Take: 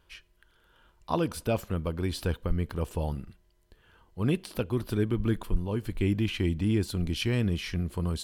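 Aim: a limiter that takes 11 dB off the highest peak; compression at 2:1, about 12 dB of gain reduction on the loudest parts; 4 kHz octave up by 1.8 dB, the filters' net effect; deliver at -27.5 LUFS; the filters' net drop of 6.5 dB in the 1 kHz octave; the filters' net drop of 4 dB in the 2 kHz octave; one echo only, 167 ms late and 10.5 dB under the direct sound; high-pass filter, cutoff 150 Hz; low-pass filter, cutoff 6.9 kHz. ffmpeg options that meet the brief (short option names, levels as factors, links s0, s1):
-af "highpass=150,lowpass=6900,equalizer=f=1000:t=o:g=-7.5,equalizer=f=2000:t=o:g=-5.5,equalizer=f=4000:t=o:g=5.5,acompressor=threshold=0.00447:ratio=2,alimiter=level_in=5.01:limit=0.0631:level=0:latency=1,volume=0.2,aecho=1:1:167:0.299,volume=11.2"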